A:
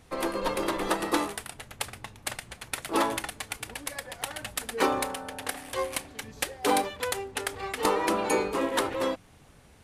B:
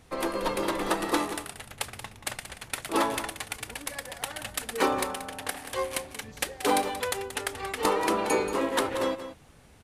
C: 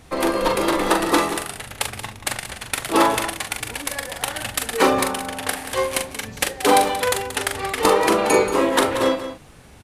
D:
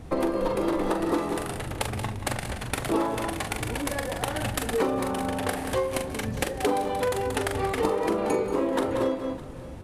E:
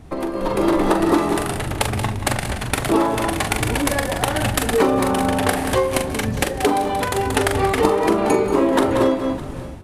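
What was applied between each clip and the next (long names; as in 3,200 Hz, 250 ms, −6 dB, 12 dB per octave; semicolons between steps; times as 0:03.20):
single-tap delay 181 ms −11.5 dB
double-tracking delay 42 ms −6 dB; level +8 dB
tilt shelving filter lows +7 dB, about 940 Hz; downward compressor 6 to 1, threshold −23 dBFS, peak gain reduction 14 dB; echo machine with several playback heads 203 ms, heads first and third, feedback 44%, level −20 dB
notch filter 500 Hz, Q 12; automatic gain control gain up to 11.5 dB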